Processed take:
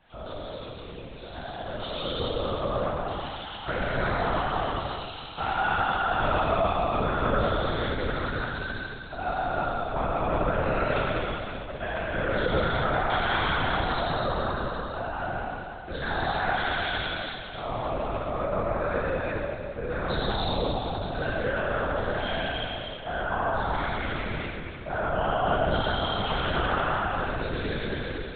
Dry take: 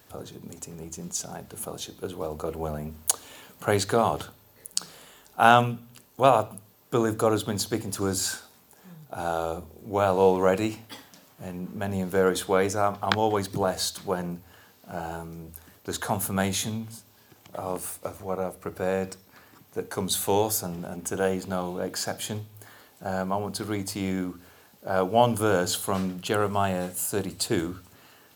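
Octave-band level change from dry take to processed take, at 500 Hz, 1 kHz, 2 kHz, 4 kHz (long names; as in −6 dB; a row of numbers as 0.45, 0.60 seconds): −2.0, +0.5, +5.0, +1.0 decibels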